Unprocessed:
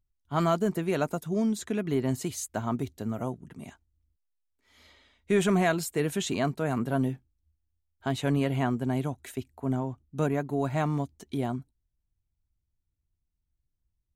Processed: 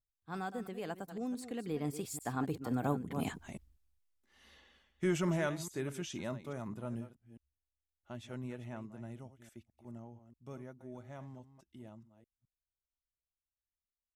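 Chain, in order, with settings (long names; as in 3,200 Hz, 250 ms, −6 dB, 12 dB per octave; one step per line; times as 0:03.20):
delay that plays each chunk backwards 190 ms, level −12 dB
source passing by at 0:03.44, 39 m/s, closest 7.1 metres
level +10.5 dB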